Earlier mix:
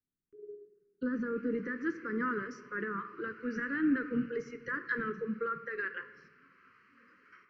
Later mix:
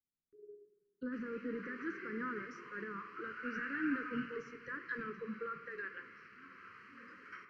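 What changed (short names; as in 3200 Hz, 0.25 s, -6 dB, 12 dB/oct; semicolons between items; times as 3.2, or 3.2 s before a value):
speech -7.5 dB; background +7.5 dB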